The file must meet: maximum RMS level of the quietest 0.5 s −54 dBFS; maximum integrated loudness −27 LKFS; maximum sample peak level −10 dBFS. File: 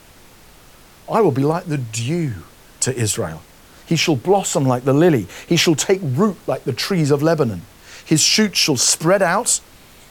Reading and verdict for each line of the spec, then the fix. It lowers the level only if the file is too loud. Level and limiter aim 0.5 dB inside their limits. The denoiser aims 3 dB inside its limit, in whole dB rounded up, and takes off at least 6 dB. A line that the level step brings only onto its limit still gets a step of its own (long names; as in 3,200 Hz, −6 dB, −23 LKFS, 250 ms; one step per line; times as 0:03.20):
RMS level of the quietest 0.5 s −46 dBFS: out of spec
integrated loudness −17.5 LKFS: out of spec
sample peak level −3.5 dBFS: out of spec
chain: level −10 dB